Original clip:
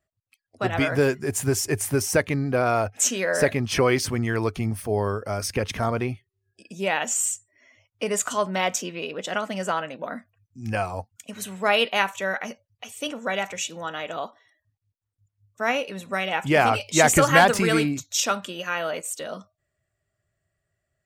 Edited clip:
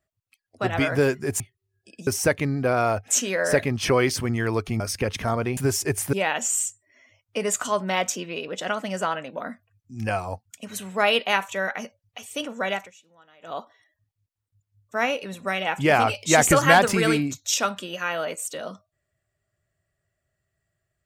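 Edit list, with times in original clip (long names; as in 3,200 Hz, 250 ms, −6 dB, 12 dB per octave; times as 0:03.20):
0:01.40–0:01.96: swap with 0:06.12–0:06.79
0:04.69–0:05.35: remove
0:13.40–0:14.24: duck −23.5 dB, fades 0.18 s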